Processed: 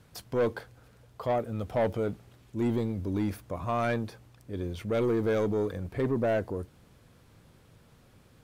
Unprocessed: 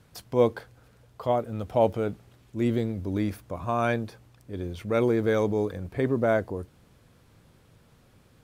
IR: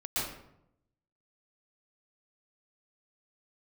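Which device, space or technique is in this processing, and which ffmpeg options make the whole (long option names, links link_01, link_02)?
saturation between pre-emphasis and de-emphasis: -af "highshelf=frequency=3800:gain=9,asoftclip=type=tanh:threshold=-21dB,highshelf=frequency=3800:gain=-9"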